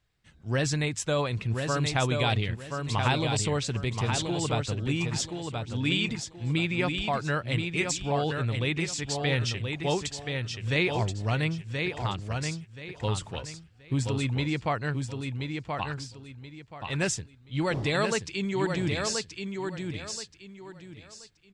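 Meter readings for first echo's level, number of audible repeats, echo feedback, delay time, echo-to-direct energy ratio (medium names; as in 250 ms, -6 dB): -5.0 dB, 3, 27%, 1028 ms, -4.5 dB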